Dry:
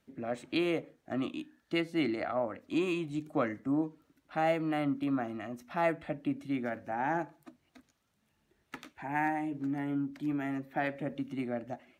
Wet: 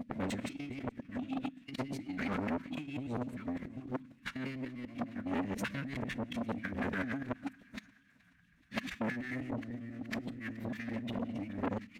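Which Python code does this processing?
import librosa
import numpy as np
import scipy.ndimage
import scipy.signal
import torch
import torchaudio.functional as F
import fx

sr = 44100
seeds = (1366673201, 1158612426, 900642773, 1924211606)

p1 = fx.local_reverse(x, sr, ms=99.0)
p2 = scipy.signal.sosfilt(scipy.signal.cheby1(2, 1.0, [240.0, 1900.0], 'bandstop', fs=sr, output='sos'), p1)
p3 = fx.high_shelf(p2, sr, hz=3400.0, db=-9.5)
p4 = fx.leveller(p3, sr, passes=2)
p5 = fx.over_compress(p4, sr, threshold_db=-38.0, ratio=-0.5)
p6 = fx.rev_schroeder(p5, sr, rt60_s=0.75, comb_ms=32, drr_db=19.5)
p7 = fx.rotary(p6, sr, hz=6.0)
p8 = p7 + fx.echo_thinned(p7, sr, ms=425, feedback_pct=69, hz=460.0, wet_db=-24.0, dry=0)
p9 = fx.pitch_keep_formants(p8, sr, semitones=-3.5)
p10 = fx.transformer_sat(p9, sr, knee_hz=1600.0)
y = p10 * librosa.db_to_amplitude(7.0)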